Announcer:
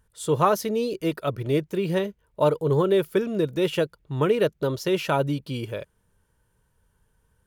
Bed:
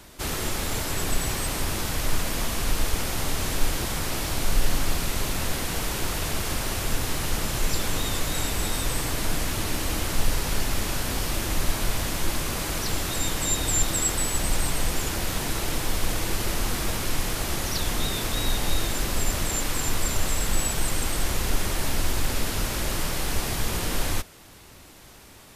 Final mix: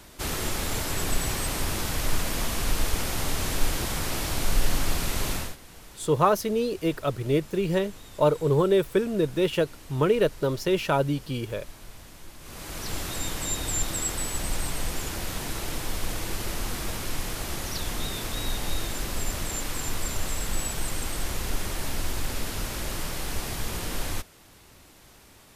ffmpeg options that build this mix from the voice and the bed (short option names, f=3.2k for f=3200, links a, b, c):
-filter_complex "[0:a]adelay=5800,volume=-0.5dB[a];[1:a]volume=14dB,afade=t=out:st=5.33:d=0.23:silence=0.11885,afade=t=in:st=12.39:d=0.58:silence=0.177828[b];[a][b]amix=inputs=2:normalize=0"